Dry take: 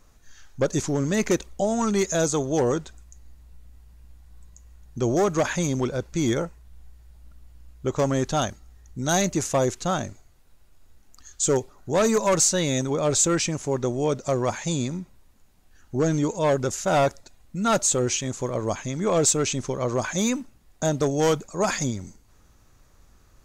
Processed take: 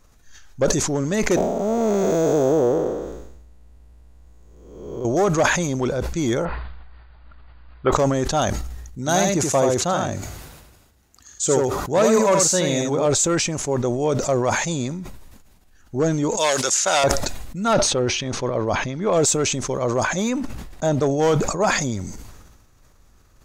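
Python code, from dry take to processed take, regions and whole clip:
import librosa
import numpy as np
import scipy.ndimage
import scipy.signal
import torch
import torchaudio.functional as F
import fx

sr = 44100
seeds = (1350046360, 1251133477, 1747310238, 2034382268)

y = fx.chain(x, sr, fx.spec_blur(span_ms=484.0),
    fx.peak_eq(hz=450.0, db=8.5, octaves=2.2),
    fx.resample_linear(factor=2), at=(1.36, 5.05))
y = fx.chain(y, sr, fx.brickwall_lowpass(high_hz=4900.0),
    fx.peak_eq(hz=1300.0, db=14.0, octaves=2.3), at=(6.45, 7.92))
y = fx.chain(y, sr, fx.highpass(hz=59.0, slope=12),
    fx.echo_single(ms=80, db=-4.0), at=(8.98, 13.06))
y = fx.chain(y, sr, fx.quant_float(bits=4),
    fx.weighting(curve='ITU-R 468'),
    fx.band_squash(depth_pct=70), at=(16.37, 17.04))
y = fx.chain(y, sr, fx.savgol(points=15),
    fx.sustainer(db_per_s=130.0), at=(17.73, 19.13))
y = fx.chain(y, sr, fx.high_shelf(hz=6300.0, db=-7.5),
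    fx.sustainer(db_per_s=140.0), at=(20.04, 21.81))
y = fx.dynamic_eq(y, sr, hz=690.0, q=0.84, threshold_db=-34.0, ratio=4.0, max_db=4)
y = fx.sustainer(y, sr, db_per_s=40.0)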